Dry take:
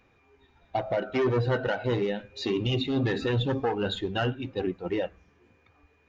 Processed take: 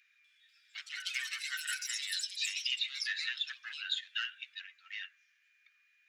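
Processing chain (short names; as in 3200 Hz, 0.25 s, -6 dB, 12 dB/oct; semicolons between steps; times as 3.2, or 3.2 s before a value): steep high-pass 1600 Hz 48 dB/oct; echoes that change speed 0.245 s, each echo +6 st, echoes 3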